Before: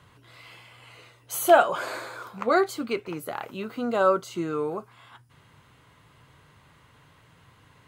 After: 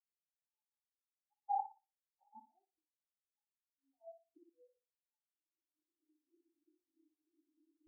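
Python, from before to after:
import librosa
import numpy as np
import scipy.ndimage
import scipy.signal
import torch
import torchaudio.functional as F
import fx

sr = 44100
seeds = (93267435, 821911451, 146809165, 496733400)

y = fx.pitch_ramps(x, sr, semitones=3.5, every_ms=842)
y = scipy.signal.sosfilt(scipy.signal.butter(2, 53.0, 'highpass', fs=sr, output='sos'), y)
y = fx.tilt_shelf(y, sr, db=7.5, hz=1100.0)
y = fx.leveller(y, sr, passes=1)
y = fx.gate_flip(y, sr, shuts_db=-23.0, range_db=-32)
y = fx.filter_sweep_highpass(y, sr, from_hz=850.0, to_hz=370.0, start_s=3.4, end_s=6.47, q=2.3)
y = fx.formant_cascade(y, sr, vowel='u')
y = fx.filter_lfo_notch(y, sr, shape='sine', hz=2.4, low_hz=430.0, high_hz=2700.0, q=2.6)
y = fx.room_flutter(y, sr, wall_m=10.1, rt60_s=1.1)
y = fx.spectral_expand(y, sr, expansion=4.0)
y = F.gain(torch.from_numpy(y), 14.5).numpy()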